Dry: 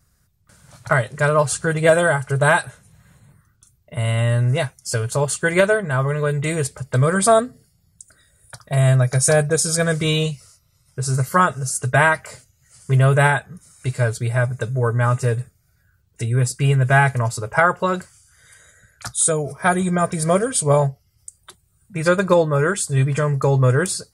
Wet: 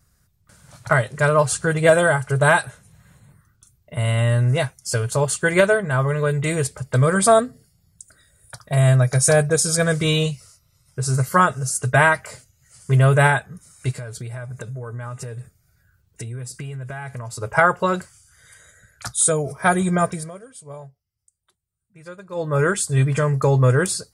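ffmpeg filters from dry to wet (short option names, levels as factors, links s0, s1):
-filter_complex "[0:a]asplit=3[s0][s1][s2];[s0]afade=t=out:st=13.91:d=0.02[s3];[s1]acompressor=threshold=0.0398:ratio=16:attack=3.2:release=140:knee=1:detection=peak,afade=t=in:st=13.91:d=0.02,afade=t=out:st=17.41:d=0.02[s4];[s2]afade=t=in:st=17.41:d=0.02[s5];[s3][s4][s5]amix=inputs=3:normalize=0,asplit=3[s6][s7][s8];[s6]atrim=end=20.31,asetpts=PTS-STARTPTS,afade=t=out:st=20.03:d=0.28:silence=0.0841395[s9];[s7]atrim=start=20.31:end=22.32,asetpts=PTS-STARTPTS,volume=0.0841[s10];[s8]atrim=start=22.32,asetpts=PTS-STARTPTS,afade=t=in:d=0.28:silence=0.0841395[s11];[s9][s10][s11]concat=n=3:v=0:a=1"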